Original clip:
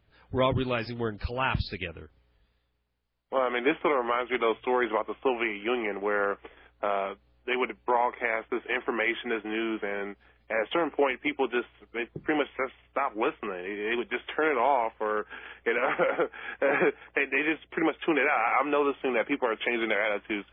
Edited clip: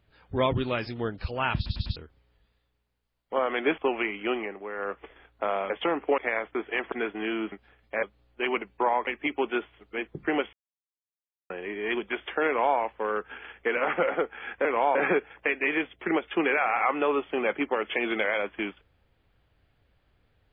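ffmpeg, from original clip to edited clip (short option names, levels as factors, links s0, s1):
-filter_complex "[0:a]asplit=18[s0][s1][s2][s3][s4][s5][s6][s7][s8][s9][s10][s11][s12][s13][s14][s15][s16][s17];[s0]atrim=end=1.662[s18];[s1]atrim=start=1.558:end=1.662[s19];[s2]atrim=start=1.558:end=1.662[s20];[s3]atrim=start=1.558:end=1.662[s21];[s4]atrim=start=1.958:end=3.782[s22];[s5]atrim=start=5.188:end=6,asetpts=PTS-STARTPTS,afade=t=out:st=0.542:d=0.27:silence=0.354813[s23];[s6]atrim=start=6:end=6.16,asetpts=PTS-STARTPTS,volume=0.355[s24];[s7]atrim=start=6.16:end=7.112,asetpts=PTS-STARTPTS,afade=t=in:d=0.27:silence=0.354813[s25];[s8]atrim=start=10.598:end=11.082[s26];[s9]atrim=start=8.148:end=8.892[s27];[s10]atrim=start=9.218:end=9.822[s28];[s11]atrim=start=10.088:end=10.602[s29];[s12]atrim=start=7.108:end=8.152[s30];[s13]atrim=start=11.078:end=12.54,asetpts=PTS-STARTPTS,afade=t=out:st=1.458:d=0.004:c=hsin[s31];[s14]atrim=start=12.54:end=13.51,asetpts=PTS-STARTPTS,volume=0[s32];[s15]atrim=start=13.51:end=16.662,asetpts=PTS-STARTPTS,afade=t=in:d=0.004:c=hsin[s33];[s16]atrim=start=14.478:end=14.782[s34];[s17]atrim=start=16.658[s35];[s18][s19]acrossfade=d=0.004:c1=hsin:c2=hsin[s36];[s36][s20]acrossfade=d=0.004:c1=hsin:c2=hsin[s37];[s37][s21]acrossfade=d=0.004:c1=hsin:c2=hsin[s38];[s38][s22]acrossfade=d=0.004:c1=hsin:c2=hsin[s39];[s23][s24][s25]concat=n=3:v=0:a=1[s40];[s39][s40]acrossfade=d=0.004:c1=hsin:c2=hsin[s41];[s41][s26]acrossfade=d=0.004:c1=hsin:c2=hsin[s42];[s42][s27]acrossfade=d=0.004:c1=hsin:c2=hsin[s43];[s43][s28]acrossfade=d=0.004:c1=hsin:c2=hsin[s44];[s44][s29]acrossfade=d=0.004:c1=hsin:c2=hsin[s45];[s45][s30]acrossfade=d=0.004:c1=hsin:c2=hsin[s46];[s31][s32][s33]concat=n=3:v=0:a=1[s47];[s46][s47]acrossfade=d=0.004:c1=hsin:c2=hsin[s48];[s48][s34]acrossfade=d=0.004:c1=hsin:c2=hsin[s49];[s49][s35]acrossfade=d=0.004:c1=hsin:c2=hsin"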